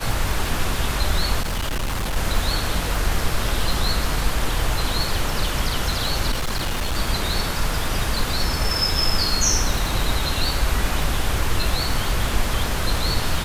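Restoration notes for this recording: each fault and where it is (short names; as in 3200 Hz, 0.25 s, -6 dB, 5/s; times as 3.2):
crackle 94/s -25 dBFS
1.41–2.17 clipped -20.5 dBFS
6.31–6.97 clipped -19.5 dBFS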